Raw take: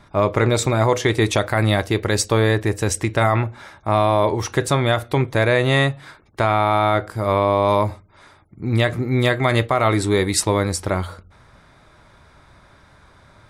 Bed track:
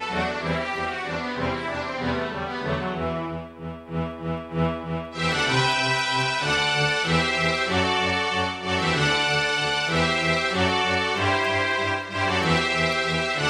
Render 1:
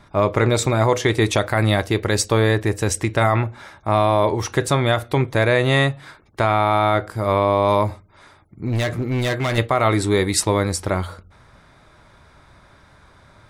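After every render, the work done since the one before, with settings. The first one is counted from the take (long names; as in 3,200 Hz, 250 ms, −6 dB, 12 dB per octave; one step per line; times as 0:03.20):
0:08.67–0:09.58: hard clipping −17.5 dBFS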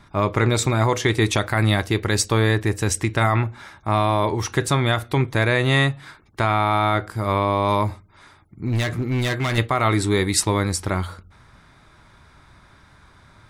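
parametric band 560 Hz −6.5 dB 0.8 octaves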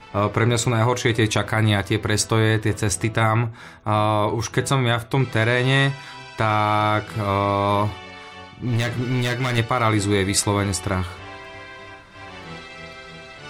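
mix in bed track −15.5 dB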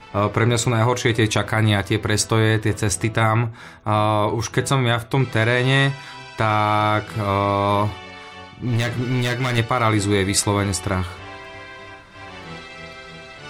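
level +1 dB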